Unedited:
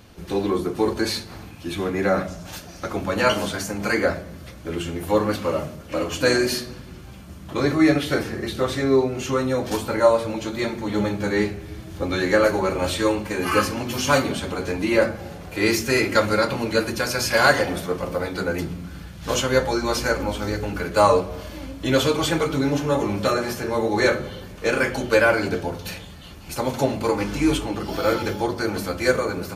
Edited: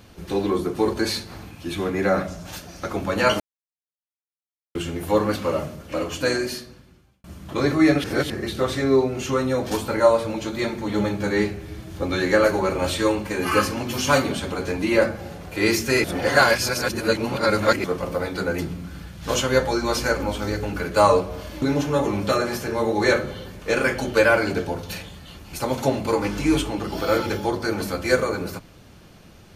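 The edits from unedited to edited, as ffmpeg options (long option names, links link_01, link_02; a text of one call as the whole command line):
ffmpeg -i in.wav -filter_complex "[0:a]asplit=9[link_01][link_02][link_03][link_04][link_05][link_06][link_07][link_08][link_09];[link_01]atrim=end=3.4,asetpts=PTS-STARTPTS,afade=type=out:start_time=3.396:duration=0.004:curve=hsin[link_10];[link_02]atrim=start=3.4:end=4.75,asetpts=PTS-STARTPTS,volume=0[link_11];[link_03]atrim=start=4.75:end=7.24,asetpts=PTS-STARTPTS,afade=type=in:duration=0.004:curve=hsin,afade=type=out:start_time=1.06:duration=1.43[link_12];[link_04]atrim=start=7.24:end=8.042,asetpts=PTS-STARTPTS,afade=type=in:duration=0.004:curve=hsin[link_13];[link_05]atrim=start=8.038:end=8.302,asetpts=PTS-STARTPTS,areverse[link_14];[link_06]atrim=start=8.298:end=16.042[link_15];[link_07]atrim=start=16.038:end=17.842,asetpts=PTS-STARTPTS,areverse[link_16];[link_08]atrim=start=17.838:end=21.622[link_17];[link_09]atrim=start=22.578[link_18];[link_10][link_11][link_12][link_13]concat=n=4:v=0:a=1[link_19];[link_19][link_14]acrossfade=duration=0.004:curve1=hsin:curve2=hsin[link_20];[link_20][link_15]acrossfade=duration=0.004:curve1=hsin:curve2=hsin[link_21];[link_21][link_16]acrossfade=duration=0.004:curve1=hsin:curve2=hsin[link_22];[link_22][link_17]acrossfade=duration=0.004:curve1=hsin:curve2=hsin[link_23];[link_23][link_18]acrossfade=duration=0.004:curve1=hsin:curve2=hsin" out.wav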